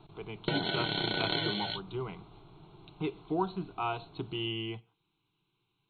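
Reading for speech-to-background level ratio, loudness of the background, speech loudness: -5.0 dB, -32.5 LUFS, -37.5 LUFS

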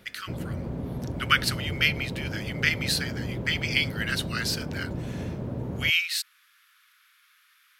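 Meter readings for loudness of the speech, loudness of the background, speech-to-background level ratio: -27.0 LUFS, -34.0 LUFS, 7.0 dB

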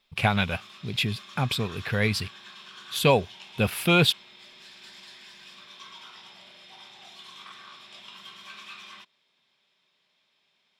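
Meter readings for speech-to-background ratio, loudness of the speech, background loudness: 19.0 dB, -25.5 LUFS, -44.5 LUFS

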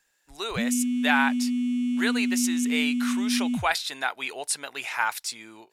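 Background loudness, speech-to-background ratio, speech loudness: -27.0 LUFS, -1.5 dB, -28.5 LUFS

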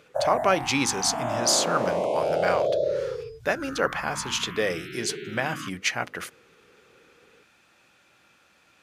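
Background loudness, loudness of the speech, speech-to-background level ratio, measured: -29.5 LUFS, -27.0 LUFS, 2.5 dB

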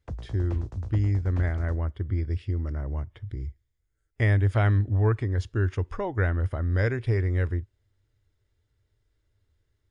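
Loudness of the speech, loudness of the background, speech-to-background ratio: -27.0 LUFS, -40.0 LUFS, 13.0 dB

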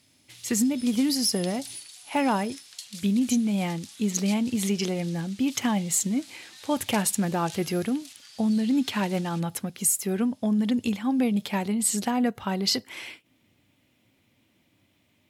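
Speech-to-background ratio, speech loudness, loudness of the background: 17.0 dB, -26.0 LUFS, -43.0 LUFS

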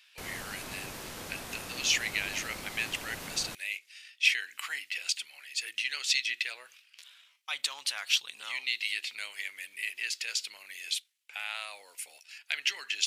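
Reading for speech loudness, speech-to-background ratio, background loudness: -32.5 LUFS, 9.0 dB, -41.5 LUFS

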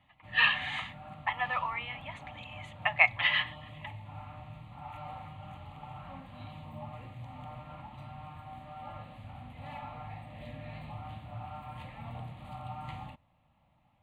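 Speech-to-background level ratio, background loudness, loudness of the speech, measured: 16.5 dB, -45.5 LUFS, -29.0 LUFS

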